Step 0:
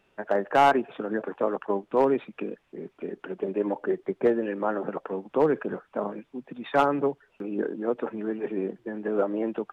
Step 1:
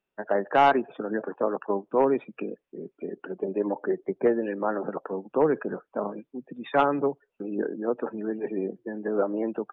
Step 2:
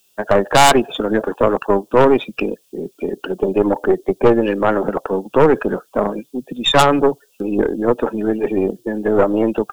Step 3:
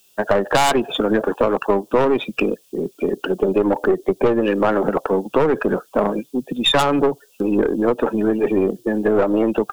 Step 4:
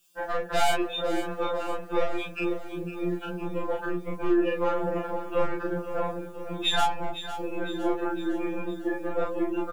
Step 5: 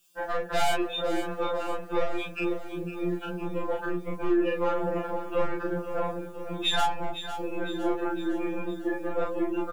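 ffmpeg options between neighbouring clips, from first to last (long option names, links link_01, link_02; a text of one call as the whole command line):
ffmpeg -i in.wav -af "afftdn=noise_reduction=19:noise_floor=-44,equalizer=frequency=88:width=4.1:gain=-13.5" out.wav
ffmpeg -i in.wav -af "aexciter=amount=11.3:drive=6.1:freq=3100,aeval=exprs='0.501*(cos(1*acos(clip(val(0)/0.501,-1,1)))-cos(1*PI/2))+0.224*(cos(5*acos(clip(val(0)/0.501,-1,1)))-cos(5*PI/2))+0.178*(cos(6*acos(clip(val(0)/0.501,-1,1)))-cos(6*PI/2))+0.0355*(cos(8*acos(clip(val(0)/0.501,-1,1)))-cos(8*PI/2))':channel_layout=same,volume=2dB" out.wav
ffmpeg -i in.wav -filter_complex "[0:a]asplit=2[link_01][link_02];[link_02]asoftclip=type=tanh:threshold=-14.5dB,volume=-3.5dB[link_03];[link_01][link_03]amix=inputs=2:normalize=0,acompressor=threshold=-11dB:ratio=5,volume=-1.5dB" out.wav
ffmpeg -i in.wav -filter_complex "[0:a]asplit=2[link_01][link_02];[link_02]adelay=34,volume=-2dB[link_03];[link_01][link_03]amix=inputs=2:normalize=0,asplit=2[link_04][link_05];[link_05]aecho=0:1:507|1014|1521|2028|2535|3042:0.251|0.136|0.0732|0.0396|0.0214|0.0115[link_06];[link_04][link_06]amix=inputs=2:normalize=0,afftfilt=real='re*2.83*eq(mod(b,8),0)':imag='im*2.83*eq(mod(b,8),0)':win_size=2048:overlap=0.75,volume=-8.5dB" out.wav
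ffmpeg -i in.wav -af "asoftclip=type=tanh:threshold=-14dB" out.wav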